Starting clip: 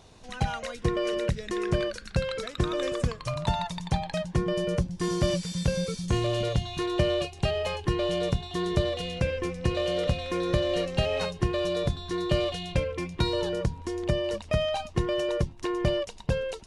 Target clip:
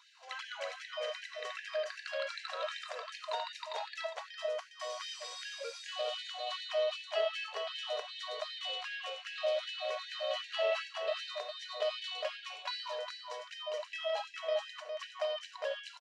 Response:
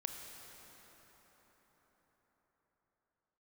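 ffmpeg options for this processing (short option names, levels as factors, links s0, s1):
-filter_complex "[0:a]bandreject=f=3300:w=24,asetrate=45938,aresample=44100,aecho=1:1:407:0.422[s0];[1:a]atrim=start_sample=2205,afade=t=out:st=0.23:d=0.01,atrim=end_sample=10584,asetrate=83790,aresample=44100[s1];[s0][s1]afir=irnorm=-1:irlink=0,asplit=2[s2][s3];[s3]acompressor=threshold=0.00891:ratio=6,volume=1[s4];[s2][s4]amix=inputs=2:normalize=0,lowpass=4700,aecho=1:1:3:0.44,afftfilt=real='re*gte(b*sr/1024,390*pow(1600/390,0.5+0.5*sin(2*PI*2.6*pts/sr)))':imag='im*gte(b*sr/1024,390*pow(1600/390,0.5+0.5*sin(2*PI*2.6*pts/sr)))':win_size=1024:overlap=0.75"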